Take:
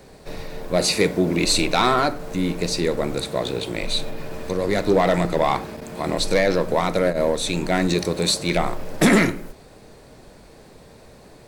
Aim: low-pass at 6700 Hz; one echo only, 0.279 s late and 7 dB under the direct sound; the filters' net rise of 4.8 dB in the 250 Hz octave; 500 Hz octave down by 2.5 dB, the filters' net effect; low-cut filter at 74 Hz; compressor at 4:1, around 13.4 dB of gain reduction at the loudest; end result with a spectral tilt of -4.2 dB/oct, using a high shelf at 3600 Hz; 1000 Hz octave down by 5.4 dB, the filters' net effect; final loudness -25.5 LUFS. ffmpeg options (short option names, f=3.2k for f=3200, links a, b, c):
-af "highpass=74,lowpass=6.7k,equalizer=f=250:t=o:g=8,equalizer=f=500:t=o:g=-4,equalizer=f=1k:t=o:g=-7.5,highshelf=f=3.6k:g=8.5,acompressor=threshold=-24dB:ratio=4,aecho=1:1:279:0.447,volume=1dB"